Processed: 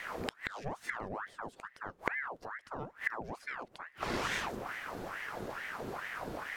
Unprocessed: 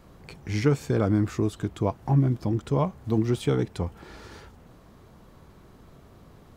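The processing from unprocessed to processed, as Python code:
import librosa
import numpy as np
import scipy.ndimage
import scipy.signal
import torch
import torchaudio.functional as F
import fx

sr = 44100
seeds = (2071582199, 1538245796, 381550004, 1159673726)

y = fx.gate_flip(x, sr, shuts_db=-29.0, range_db=-28)
y = fx.ring_lfo(y, sr, carrier_hz=1100.0, swing_pct=75, hz=2.3)
y = y * librosa.db_to_amplitude(12.5)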